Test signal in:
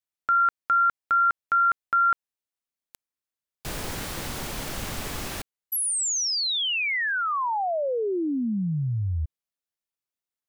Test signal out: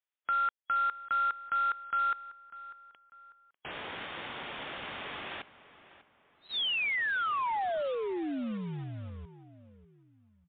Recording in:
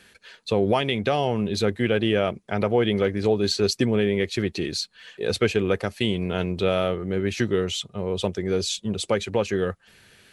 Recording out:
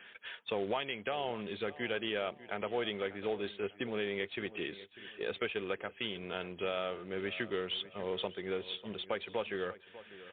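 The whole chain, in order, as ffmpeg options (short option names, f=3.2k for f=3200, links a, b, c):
-filter_complex "[0:a]highpass=f=760:p=1,acompressor=threshold=-34dB:ratio=2.5:attack=1.7:release=869:knee=1:detection=rms,aresample=8000,acrusher=bits=4:mode=log:mix=0:aa=0.000001,aresample=44100,asplit=2[a][b];[b]adelay=596,lowpass=f=3k:p=1,volume=-16dB,asplit=2[c][d];[d]adelay=596,lowpass=f=3k:p=1,volume=0.38,asplit=2[e][f];[f]adelay=596,lowpass=f=3k:p=1,volume=0.38[g];[a][c][e][g]amix=inputs=4:normalize=0,volume=2.5dB" -ar 8000 -c:a libmp3lame -b:a 64k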